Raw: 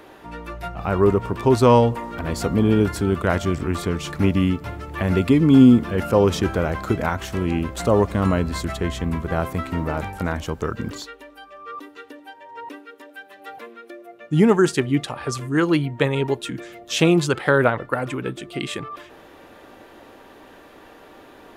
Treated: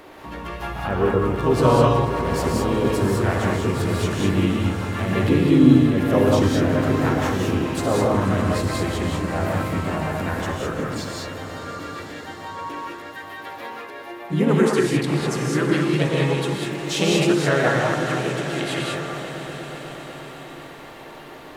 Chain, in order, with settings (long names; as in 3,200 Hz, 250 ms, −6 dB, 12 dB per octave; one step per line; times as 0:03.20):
hum removal 107.9 Hz, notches 18
in parallel at +1 dB: downward compressor 12 to 1, threshold −31 dBFS, peak gain reduction 23.5 dB
on the sum: echo that builds up and dies away 122 ms, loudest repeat 5, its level −16.5 dB
pitch-shifted copies added +3 semitones −4 dB
reverb whose tail is shaped and stops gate 230 ms rising, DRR −2 dB
level −7 dB